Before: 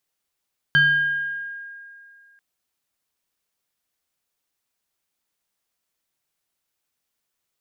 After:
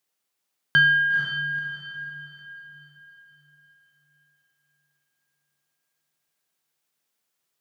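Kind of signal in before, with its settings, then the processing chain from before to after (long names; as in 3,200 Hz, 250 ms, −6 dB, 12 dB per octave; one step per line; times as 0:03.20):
two-operator FM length 1.64 s, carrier 1,620 Hz, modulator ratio 0.91, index 0.63, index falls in 1.57 s exponential, decay 2.34 s, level −11.5 dB
high-pass filter 130 Hz
feedback delay with all-pass diffusion 481 ms, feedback 41%, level −5.5 dB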